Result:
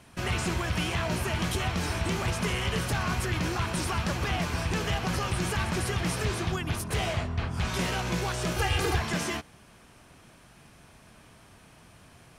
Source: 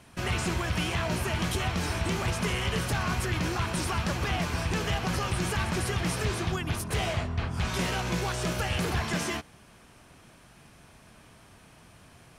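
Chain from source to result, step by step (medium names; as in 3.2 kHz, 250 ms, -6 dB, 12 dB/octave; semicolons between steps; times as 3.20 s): 8.56–8.97 s: comb 2.5 ms, depth 92%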